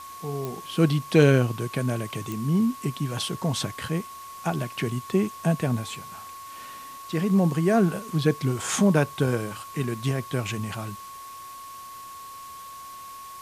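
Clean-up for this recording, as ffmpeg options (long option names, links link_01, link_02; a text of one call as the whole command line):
ffmpeg -i in.wav -af "adeclick=threshold=4,bandreject=frequency=1100:width=30,afwtdn=0.0045" out.wav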